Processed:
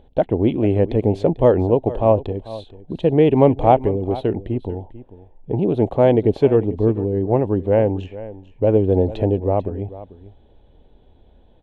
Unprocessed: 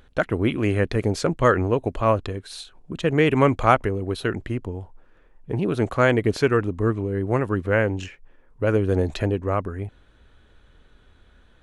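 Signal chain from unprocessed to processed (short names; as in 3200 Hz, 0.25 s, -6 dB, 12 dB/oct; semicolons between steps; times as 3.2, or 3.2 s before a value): EQ curve 120 Hz 0 dB, 850 Hz +4 dB, 1300 Hz -20 dB, 3500 Hz -6 dB, 5200 Hz -22 dB; echo 0.444 s -16.5 dB; gain +3 dB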